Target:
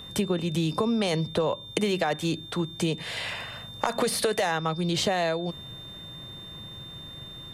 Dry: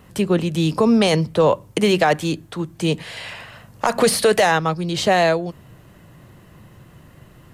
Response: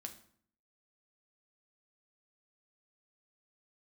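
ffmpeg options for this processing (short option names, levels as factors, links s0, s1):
-af "acompressor=threshold=0.0708:ratio=6,aeval=exprs='val(0)+0.00891*sin(2*PI*3600*n/s)':c=same"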